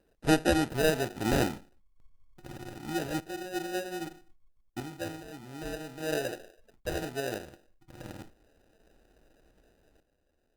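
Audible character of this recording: random-step tremolo 2.5 Hz, depth 80%; aliases and images of a low sample rate 1.1 kHz, jitter 0%; Opus

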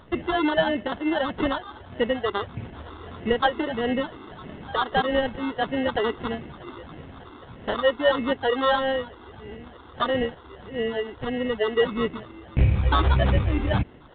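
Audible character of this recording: phasing stages 6, 1.6 Hz, lowest notch 150–1400 Hz; aliases and images of a low sample rate 2.4 kHz, jitter 0%; µ-law

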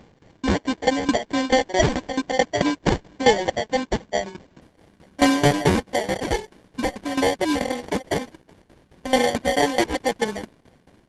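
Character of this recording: aliases and images of a low sample rate 1.3 kHz, jitter 0%; tremolo saw down 4.6 Hz, depth 85%; Opus

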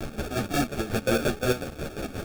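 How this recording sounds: a quantiser's noise floor 6-bit, dither triangular; chopped level 5.6 Hz, depth 65%, duty 50%; aliases and images of a low sample rate 1 kHz, jitter 0%; a shimmering, thickened sound

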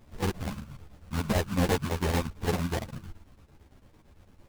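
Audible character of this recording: chopped level 8.9 Hz, depth 60%, duty 70%; aliases and images of a low sample rate 1.3 kHz, jitter 20%; a shimmering, thickened sound

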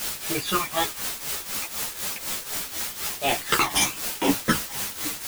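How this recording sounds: phasing stages 12, 1 Hz, lowest notch 440–1500 Hz; a quantiser's noise floor 6-bit, dither triangular; tremolo triangle 4 Hz, depth 80%; a shimmering, thickened sound

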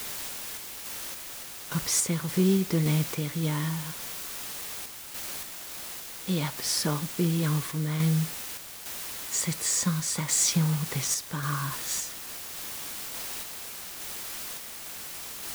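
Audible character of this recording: a quantiser's noise floor 6-bit, dither triangular; random-step tremolo

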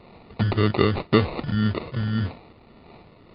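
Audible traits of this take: phasing stages 2, 1.8 Hz, lowest notch 590–2400 Hz; aliases and images of a low sample rate 1.6 kHz, jitter 0%; MP3

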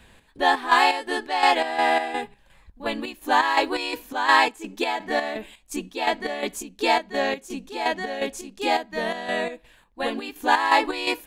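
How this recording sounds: chopped level 2.8 Hz, depth 60%, duty 55%

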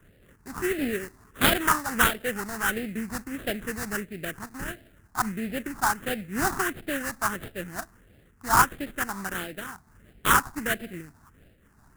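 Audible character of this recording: aliases and images of a low sample rate 2.3 kHz, jitter 20%; phasing stages 4, 1.5 Hz, lowest notch 500–1000 Hz; random flutter of the level

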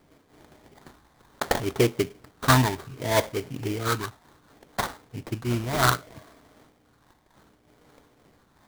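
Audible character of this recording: phasing stages 8, 0.66 Hz, lowest notch 440–2600 Hz; aliases and images of a low sample rate 2.7 kHz, jitter 20%; random flutter of the level

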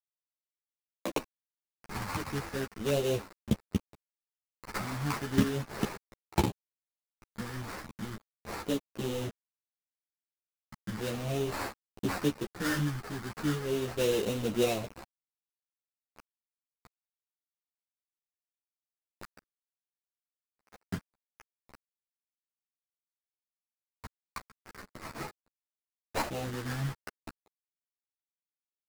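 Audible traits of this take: a quantiser's noise floor 6-bit, dither none; phasing stages 4, 0.36 Hz, lowest notch 500–2000 Hz; aliases and images of a low sample rate 3.3 kHz, jitter 20%; a shimmering, thickened sound

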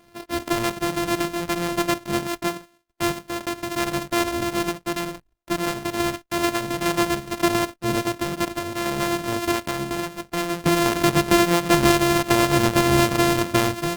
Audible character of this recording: a buzz of ramps at a fixed pitch in blocks of 128 samples; random-step tremolo; Opus

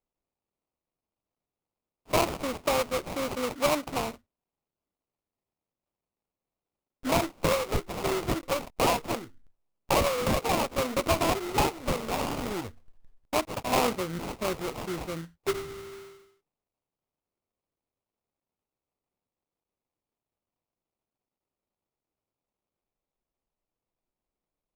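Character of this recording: aliases and images of a low sample rate 1.7 kHz, jitter 20%

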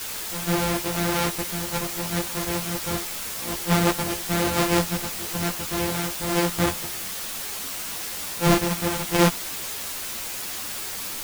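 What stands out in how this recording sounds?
a buzz of ramps at a fixed pitch in blocks of 256 samples; random-step tremolo, depth 70%; a quantiser's noise floor 6-bit, dither triangular; a shimmering, thickened sound

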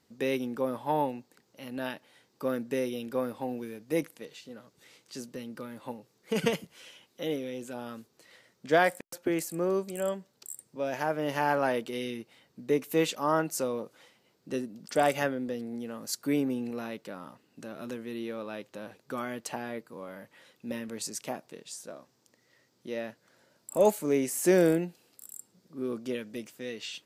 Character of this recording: noise floor -70 dBFS; spectral tilt -4.5 dB/octave

